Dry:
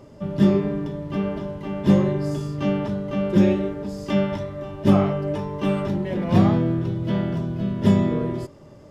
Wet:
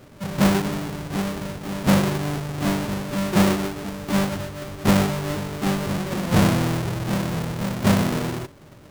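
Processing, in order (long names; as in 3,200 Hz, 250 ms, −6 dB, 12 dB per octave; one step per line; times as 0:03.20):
each half-wave held at its own peak
level −5 dB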